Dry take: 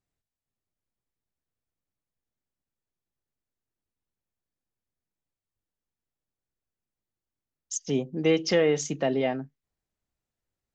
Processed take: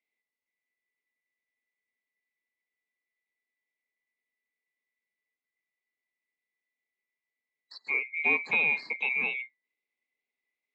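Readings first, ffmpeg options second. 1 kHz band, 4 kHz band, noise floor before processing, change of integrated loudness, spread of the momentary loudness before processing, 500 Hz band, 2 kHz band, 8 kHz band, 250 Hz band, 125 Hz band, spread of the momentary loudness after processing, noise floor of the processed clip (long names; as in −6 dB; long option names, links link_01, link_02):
−3.5 dB, −9.0 dB, below −85 dBFS, −0.5 dB, 12 LU, −18.0 dB, +10.5 dB, below −30 dB, −18.5 dB, below −20 dB, 13 LU, below −85 dBFS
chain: -filter_complex "[0:a]afftfilt=real='real(if(lt(b,920),b+92*(1-2*mod(floor(b/92),2)),b),0)':imag='imag(if(lt(b,920),b+92*(1-2*mod(floor(b/92),2)),b),0)':win_size=2048:overlap=0.75,acrossover=split=2800[link_01][link_02];[link_02]acompressor=threshold=-42dB:ratio=4:attack=1:release=60[link_03];[link_01][link_03]amix=inputs=2:normalize=0,highpass=frequency=200:width=0.5412,highpass=frequency=200:width=1.3066,equalizer=frequency=250:width_type=q:width=4:gain=6,equalizer=frequency=430:width_type=q:width=4:gain=7,equalizer=frequency=1400:width_type=q:width=4:gain=-10,equalizer=frequency=3100:width_type=q:width=4:gain=-4,lowpass=frequency=4200:width=0.5412,lowpass=frequency=4200:width=1.3066"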